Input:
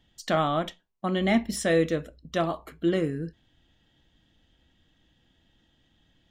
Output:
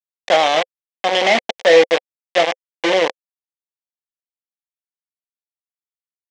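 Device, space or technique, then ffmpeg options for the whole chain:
hand-held game console: -af "acrusher=bits=3:mix=0:aa=0.000001,highpass=470,equalizer=frequency=520:width_type=q:width=4:gain=10,equalizer=frequency=760:width_type=q:width=4:gain=6,equalizer=frequency=1300:width_type=q:width=4:gain=-8,equalizer=frequency=2100:width_type=q:width=4:gain=6,equalizer=frequency=3200:width_type=q:width=4:gain=5,equalizer=frequency=4500:width_type=q:width=4:gain=-3,lowpass=frequency=5700:width=0.5412,lowpass=frequency=5700:width=1.3066,volume=7.5dB"

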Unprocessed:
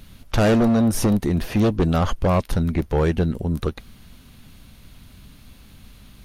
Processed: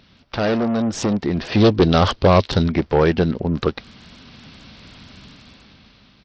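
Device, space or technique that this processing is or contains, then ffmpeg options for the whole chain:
Bluetooth headset: -filter_complex "[0:a]asettb=1/sr,asplit=3[link_01][link_02][link_03];[link_01]atrim=end=1.524[link_04];[link_02]atrim=start=1.52:end=2.68,asetpts=PTS-STARTPTS,afade=type=in:duration=0.004:curve=qsin,afade=type=out:start_time=1.156:duration=0.004:curve=qsin,equalizer=frequency=100:width_type=o:width=0.67:gain=7,equalizer=frequency=400:width_type=o:width=0.67:gain=4,equalizer=frequency=4000:width_type=o:width=0.67:gain=9[link_05];[link_03]atrim=start=2.676[link_06];[link_04][link_05]acrossfade=duration=0.004:curve1=hsin:curve2=qsin[link_07];[link_07][link_06]acrossfade=duration=0.004:curve1=qsin:curve2=hsin,highpass=frequency=230:poles=1,dynaudnorm=framelen=290:gausssize=9:maxgain=16dB,aresample=16000,aresample=44100,volume=-1dB" -ar 44100 -c:a sbc -b:a 64k

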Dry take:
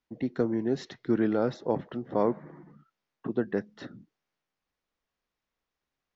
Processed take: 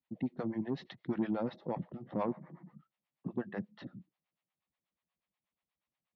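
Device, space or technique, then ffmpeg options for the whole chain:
guitar amplifier with harmonic tremolo: -filter_complex "[0:a]acrossover=split=530[link_01][link_02];[link_01]aeval=exprs='val(0)*(1-1/2+1/2*cos(2*PI*8.3*n/s))':channel_layout=same[link_03];[link_02]aeval=exprs='val(0)*(1-1/2-1/2*cos(2*PI*8.3*n/s))':channel_layout=same[link_04];[link_03][link_04]amix=inputs=2:normalize=0,asoftclip=type=tanh:threshold=-21.5dB,highpass=77,equalizer=frequency=180:width_type=q:width=4:gain=6,equalizer=frequency=280:width_type=q:width=4:gain=-3,equalizer=frequency=430:width_type=q:width=4:gain=-9,equalizer=frequency=1500:width_type=q:width=4:gain=-7,lowpass=frequency=3900:width=0.5412,lowpass=frequency=3900:width=1.3066"

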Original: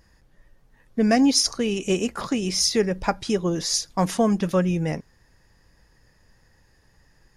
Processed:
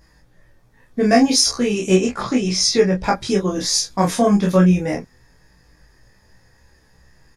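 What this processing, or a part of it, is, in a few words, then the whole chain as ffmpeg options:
double-tracked vocal: -filter_complex "[0:a]bandreject=frequency=2900:width=13,asplit=2[link_01][link_02];[link_02]adelay=16,volume=-2.5dB[link_03];[link_01][link_03]amix=inputs=2:normalize=0,flanger=delay=22.5:depth=7.3:speed=0.36,asettb=1/sr,asplit=3[link_04][link_05][link_06];[link_04]atrim=end=1.964[link_07];[link_05]atrim=start=1.96:end=3.04,asetpts=PTS-STARTPTS,afade=type=in:duration=0.004:curve=qsin,afade=type=out:start_time=1.076:duration=0.004:curve=qsin,lowpass=7300[link_08];[link_06]atrim=start=3.036[link_09];[link_07][link_08]acrossfade=duration=0.004:curve1=hsin:curve2=qsin[link_10];[link_10][link_09]acrossfade=duration=0.004:curve1=qsin:curve2=hsin,volume=6.5dB"

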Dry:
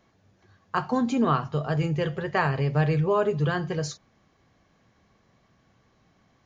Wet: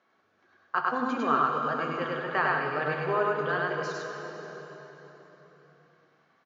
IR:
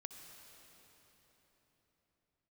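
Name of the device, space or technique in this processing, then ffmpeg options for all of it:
station announcement: -filter_complex "[0:a]highpass=330,lowpass=4500,equalizer=frequency=1400:width_type=o:width=0.54:gain=9,aecho=1:1:102|192.4:0.891|0.251[link_01];[1:a]atrim=start_sample=2205[link_02];[link_01][link_02]afir=irnorm=-1:irlink=0"

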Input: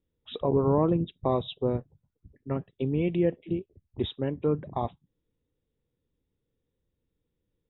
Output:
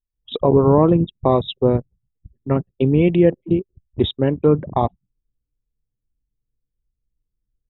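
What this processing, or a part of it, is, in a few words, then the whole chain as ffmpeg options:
voice memo with heavy noise removal: -af "anlmdn=0.398,dynaudnorm=framelen=110:gausssize=3:maxgain=12dB"

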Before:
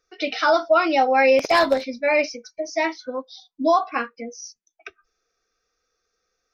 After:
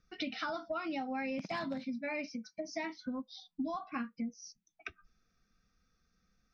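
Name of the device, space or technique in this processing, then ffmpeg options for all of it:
jukebox: -filter_complex "[0:a]lowpass=5200,lowshelf=frequency=290:width_type=q:width=3:gain=13.5,acompressor=threshold=-34dB:ratio=5,asettb=1/sr,asplit=3[link_01][link_02][link_03];[link_01]atrim=end=1.384[link_04];[link_02]atrim=start=1.38:end=2.9,asetpts=PTS-STARTPTS,afade=type=in:duration=0.004:curve=qsin,afade=type=out:start_time=1.516:duration=0.004:curve=qsin,highpass=140[link_05];[link_03]atrim=start=2.896[link_06];[link_04][link_05]acrossfade=duration=0.004:curve1=hsin:curve2=qsin[link_07];[link_07][link_06]acrossfade=duration=0.004:curve1=qsin:curve2=hsin,volume=-3dB"

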